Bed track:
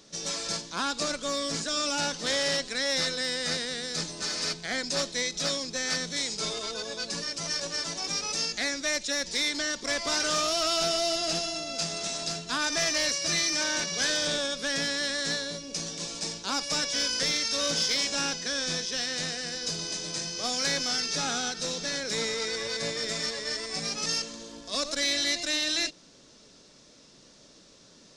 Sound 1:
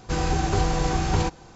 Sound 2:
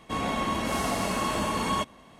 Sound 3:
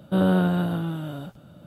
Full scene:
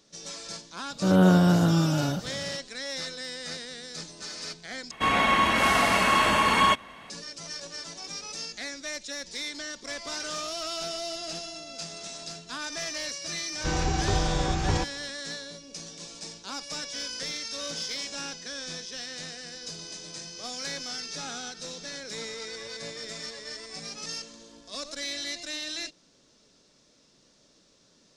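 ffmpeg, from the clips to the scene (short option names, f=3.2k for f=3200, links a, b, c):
-filter_complex "[0:a]volume=-7dB[a];[3:a]dynaudnorm=f=160:g=3:m=11.5dB[b];[2:a]equalizer=f=2k:t=o:w=2.4:g=12.5[c];[a]asplit=2[d][e];[d]atrim=end=4.914[f];[c]atrim=end=2.19,asetpts=PTS-STARTPTS,volume=-0.5dB[g];[e]atrim=start=7.096[h];[b]atrim=end=1.66,asetpts=PTS-STARTPTS,volume=-4.5dB,afade=t=in:d=0.004:c=hsin,afade=t=out:st=1.656:d=0.004:c=hsin,adelay=900[i];[1:a]atrim=end=1.55,asetpts=PTS-STARTPTS,volume=-3.5dB,afade=t=in:d=0.004:c=hsin,afade=t=out:st=1.546:d=0.004:c=hsin,adelay=13550[j];[f][g]acrossfade=d=0.004:c1=hsin:c2=hsin[k];[k][h]acrossfade=d=0.004:c1=hsin:c2=hsin[l];[l][i][j]amix=inputs=3:normalize=0"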